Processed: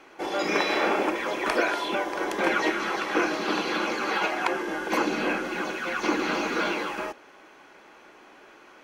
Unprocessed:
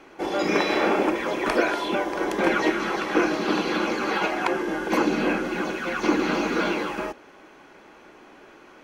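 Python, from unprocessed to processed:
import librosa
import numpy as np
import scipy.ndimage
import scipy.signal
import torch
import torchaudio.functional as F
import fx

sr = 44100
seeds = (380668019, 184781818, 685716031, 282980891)

y = fx.low_shelf(x, sr, hz=360.0, db=-9.0)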